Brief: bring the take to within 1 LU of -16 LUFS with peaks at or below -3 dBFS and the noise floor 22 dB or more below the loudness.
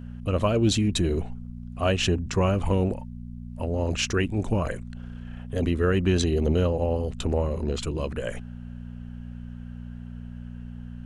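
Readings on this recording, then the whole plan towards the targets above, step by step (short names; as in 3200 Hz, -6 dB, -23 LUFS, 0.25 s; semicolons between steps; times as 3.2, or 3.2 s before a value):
hum 60 Hz; harmonics up to 240 Hz; hum level -35 dBFS; loudness -26.0 LUFS; peak -11.0 dBFS; loudness target -16.0 LUFS
-> de-hum 60 Hz, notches 4; gain +10 dB; limiter -3 dBFS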